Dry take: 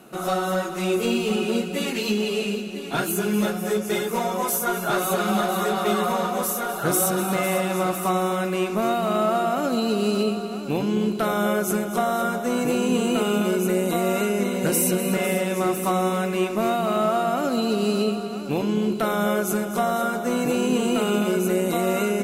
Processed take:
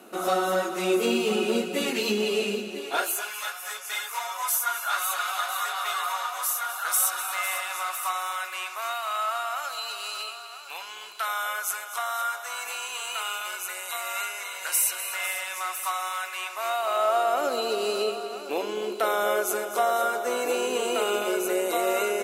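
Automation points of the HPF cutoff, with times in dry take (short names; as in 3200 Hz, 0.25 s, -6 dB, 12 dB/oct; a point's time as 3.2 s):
HPF 24 dB/oct
2.7 s 240 Hz
3.36 s 980 Hz
16.44 s 980 Hz
17.44 s 400 Hz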